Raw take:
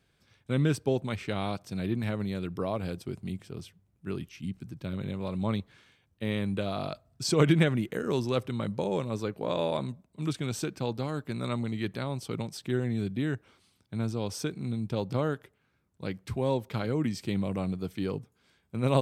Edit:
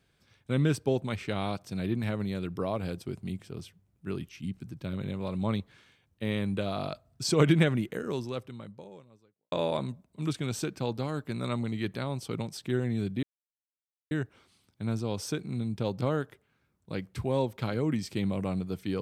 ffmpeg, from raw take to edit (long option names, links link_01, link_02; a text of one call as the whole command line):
ffmpeg -i in.wav -filter_complex "[0:a]asplit=3[link_01][link_02][link_03];[link_01]atrim=end=9.52,asetpts=PTS-STARTPTS,afade=type=out:start_time=7.76:duration=1.76:curve=qua[link_04];[link_02]atrim=start=9.52:end=13.23,asetpts=PTS-STARTPTS,afade=type=in:duration=0.004:curve=hsin,afade=type=out:start_time=3.706:duration=0.004:curve=hsin,apad=pad_dur=0.88[link_05];[link_03]atrim=start=13.23,asetpts=PTS-STARTPTS,afade=type=in:duration=0.004:curve=hsin[link_06];[link_04][link_05][link_06]concat=n=3:v=0:a=1" out.wav